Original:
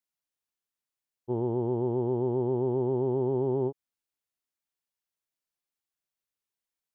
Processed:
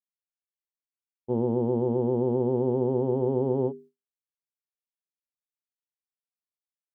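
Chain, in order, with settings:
mains-hum notches 50/100/150/200/250/300/350/400 Hz
noise gate with hold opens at −45 dBFS
hollow resonant body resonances 220/500 Hz, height 10 dB, ringing for 60 ms
level +1 dB

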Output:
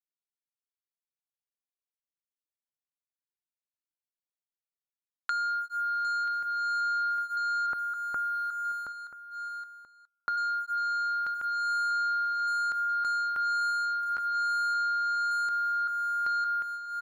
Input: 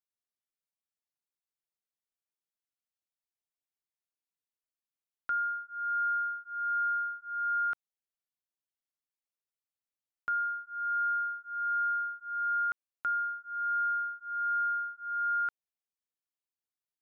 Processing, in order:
feedback delay that plays each chunk backwards 567 ms, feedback 48%, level −6 dB
noise gate −52 dBFS, range −19 dB
0:07.66–0:10.36: low-pass filter 1,300 Hz → 1,100 Hz 12 dB per octave
leveller curve on the samples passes 2
brickwall limiter −27.5 dBFS, peak gain reduction 4.5 dB
downward compressor 10 to 1, threshold −37 dBFS, peak gain reduction 8 dB
single-tap delay 983 ms −15.5 dB
level +8 dB

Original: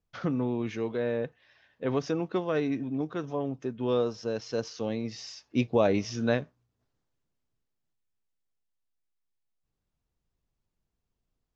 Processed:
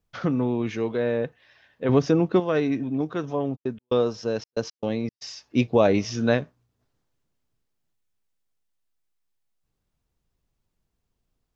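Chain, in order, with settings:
0:01.89–0:02.40: low-shelf EQ 450 Hz +7.5 dB
0:03.55–0:05.21: gate pattern ".xx.x.xxxx.x" 115 BPM −60 dB
level +5 dB

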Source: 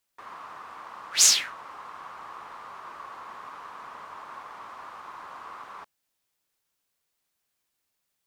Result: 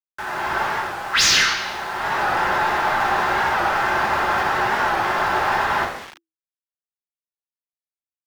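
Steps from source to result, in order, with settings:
noise that follows the level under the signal 15 dB
high-shelf EQ 6,100 Hz +8.5 dB
convolution reverb RT60 0.85 s, pre-delay 3 ms, DRR −1 dB
automatic gain control gain up to 9.5 dB
high-pass filter 190 Hz 6 dB per octave
bit reduction 7 bits
octave-band graphic EQ 500/1,000/2,000 Hz −4/−10/+4 dB
frequency shifter −340 Hz
mid-hump overdrive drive 10 dB, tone 1,600 Hz, clips at −12.5 dBFS
wow of a warped record 45 rpm, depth 100 cents
level +7 dB

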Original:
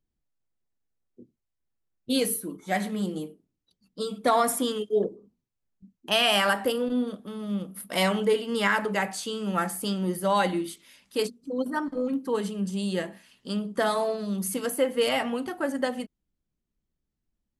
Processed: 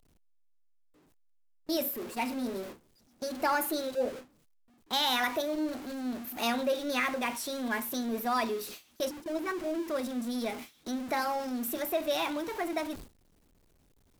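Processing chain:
converter with a step at zero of −31 dBFS
speed change +24%
noise gate with hold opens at −27 dBFS
level −7 dB

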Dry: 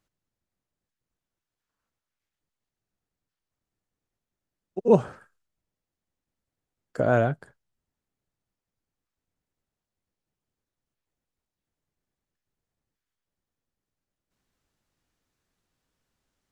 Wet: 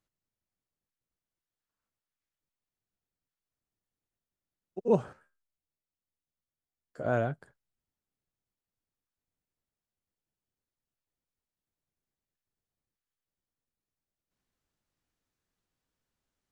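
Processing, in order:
0:05.13–0:07.05: tuned comb filter 76 Hz, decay 0.17 s, harmonics all, mix 100%
level −7 dB

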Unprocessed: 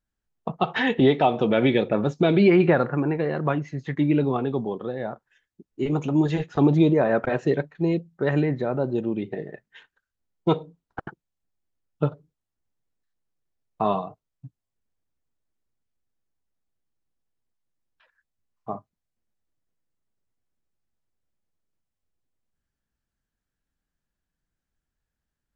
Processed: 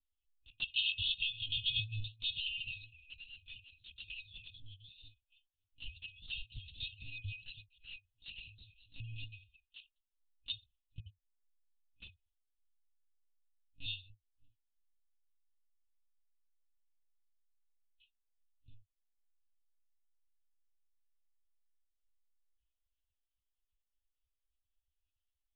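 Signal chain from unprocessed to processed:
brick-wall band-stop 110–2,500 Hz
flanger swept by the level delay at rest 10.3 ms, full sweep at −39.5 dBFS
one-pitch LPC vocoder at 8 kHz 280 Hz
level +2.5 dB

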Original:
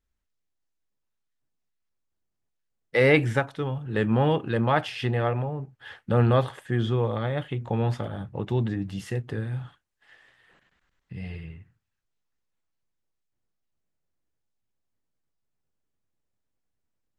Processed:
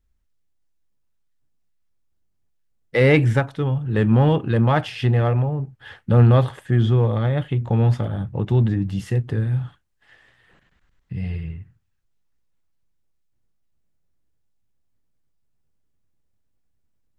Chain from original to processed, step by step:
low-shelf EQ 200 Hz +10.5 dB
in parallel at −12 dB: gain into a clipping stage and back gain 17 dB

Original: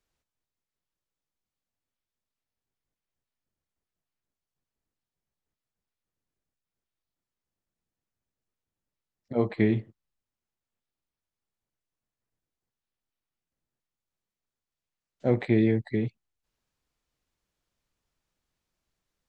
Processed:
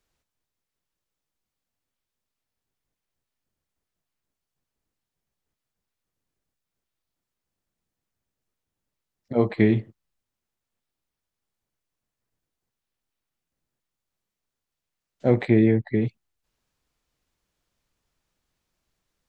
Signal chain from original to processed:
0:15.50–0:16.02: low-pass filter 2,600 Hz 12 dB per octave
level +4.5 dB

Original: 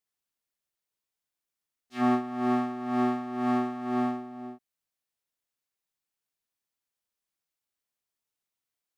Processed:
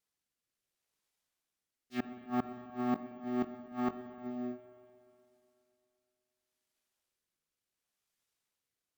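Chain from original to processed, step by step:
rotating-speaker cabinet horn 0.7 Hz
gate with flip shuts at −25 dBFS, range −26 dB
0:02.93–0:04.52: double-tracking delay 21 ms −11 dB
spring reverb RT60 2.9 s, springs 42/59 ms, chirp 60 ms, DRR 11 dB
bad sample-rate conversion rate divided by 2×, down none, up hold
level +3.5 dB

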